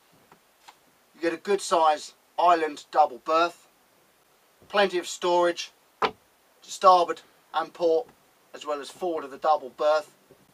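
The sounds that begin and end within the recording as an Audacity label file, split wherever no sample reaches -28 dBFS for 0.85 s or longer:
1.230000	3.480000	sound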